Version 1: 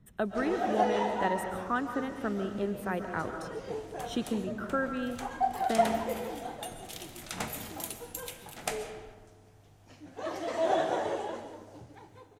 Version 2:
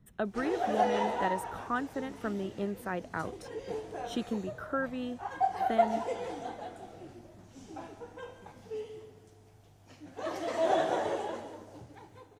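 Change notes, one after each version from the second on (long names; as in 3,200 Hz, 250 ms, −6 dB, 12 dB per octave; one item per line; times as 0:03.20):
speech: send off
second sound: muted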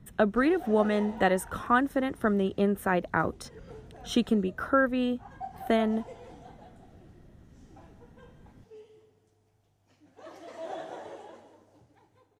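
speech +9.0 dB
background −11.0 dB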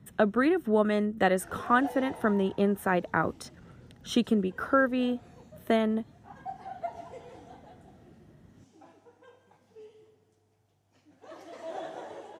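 background: entry +1.05 s
master: add high-pass filter 84 Hz 12 dB per octave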